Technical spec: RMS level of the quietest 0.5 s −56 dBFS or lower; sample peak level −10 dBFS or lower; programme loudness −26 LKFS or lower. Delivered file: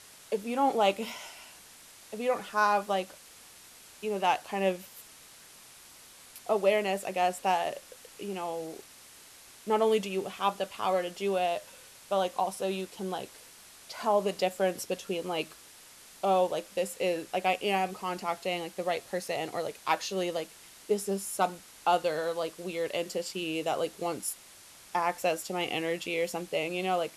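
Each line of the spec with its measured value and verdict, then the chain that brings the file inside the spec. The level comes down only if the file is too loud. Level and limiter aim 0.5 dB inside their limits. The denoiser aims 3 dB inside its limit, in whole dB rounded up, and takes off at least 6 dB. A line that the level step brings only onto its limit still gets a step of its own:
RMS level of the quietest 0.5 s −53 dBFS: out of spec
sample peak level −12.0 dBFS: in spec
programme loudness −31.0 LKFS: in spec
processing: broadband denoise 6 dB, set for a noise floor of −53 dBFS

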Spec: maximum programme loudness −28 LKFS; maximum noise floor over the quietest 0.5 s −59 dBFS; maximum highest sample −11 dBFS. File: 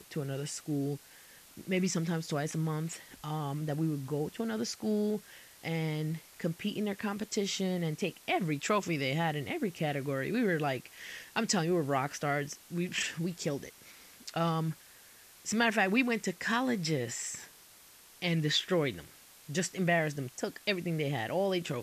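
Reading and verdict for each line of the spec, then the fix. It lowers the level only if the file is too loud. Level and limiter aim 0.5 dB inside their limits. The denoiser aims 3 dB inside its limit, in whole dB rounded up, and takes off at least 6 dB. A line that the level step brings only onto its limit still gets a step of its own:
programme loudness −33.0 LKFS: in spec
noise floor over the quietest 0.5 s −57 dBFS: out of spec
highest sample −14.0 dBFS: in spec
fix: broadband denoise 6 dB, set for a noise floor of −57 dBFS

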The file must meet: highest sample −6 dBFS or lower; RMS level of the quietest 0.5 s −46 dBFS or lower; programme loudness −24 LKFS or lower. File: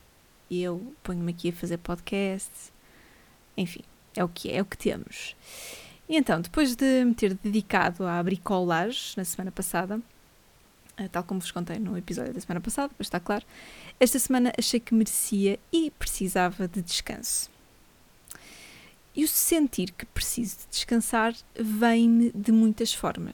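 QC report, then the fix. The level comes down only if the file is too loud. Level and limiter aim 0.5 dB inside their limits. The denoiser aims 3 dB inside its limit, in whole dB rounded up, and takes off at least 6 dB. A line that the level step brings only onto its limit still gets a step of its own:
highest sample −6.5 dBFS: in spec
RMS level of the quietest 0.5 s −58 dBFS: in spec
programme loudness −27.0 LKFS: in spec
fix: no processing needed

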